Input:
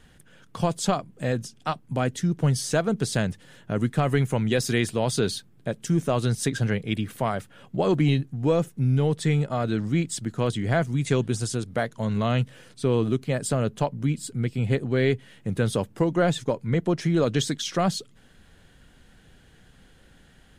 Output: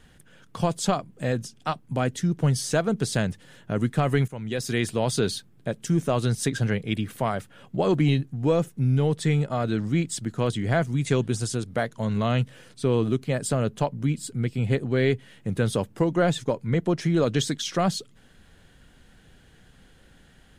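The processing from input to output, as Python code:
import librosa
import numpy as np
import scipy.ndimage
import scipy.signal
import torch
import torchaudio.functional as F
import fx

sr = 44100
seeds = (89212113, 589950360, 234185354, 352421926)

y = fx.edit(x, sr, fx.fade_in_from(start_s=4.28, length_s=0.64, floor_db=-15.5), tone=tone)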